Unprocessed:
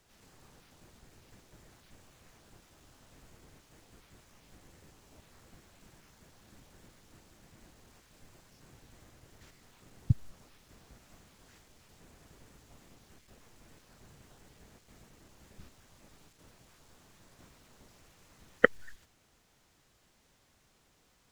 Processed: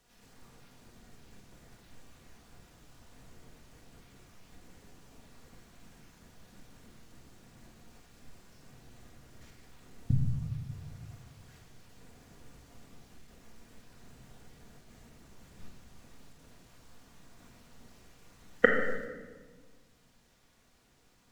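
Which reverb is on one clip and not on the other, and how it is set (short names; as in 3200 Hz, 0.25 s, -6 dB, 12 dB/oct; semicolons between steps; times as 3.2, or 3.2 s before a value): shoebox room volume 1200 m³, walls mixed, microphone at 1.8 m; gain -2 dB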